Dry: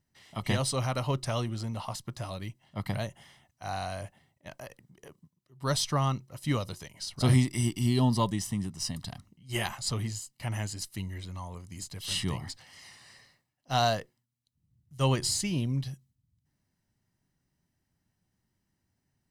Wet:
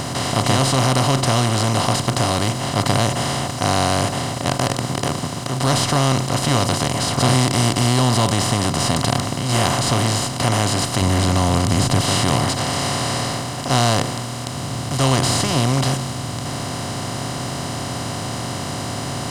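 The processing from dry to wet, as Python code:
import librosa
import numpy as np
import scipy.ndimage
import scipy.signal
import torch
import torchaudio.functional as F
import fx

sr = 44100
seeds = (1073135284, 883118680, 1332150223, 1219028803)

y = fx.bin_compress(x, sr, power=0.2)
y = fx.low_shelf(y, sr, hz=220.0, db=7.5, at=(11.01, 12.01))
y = y * 10.0 ** (2.0 / 20.0)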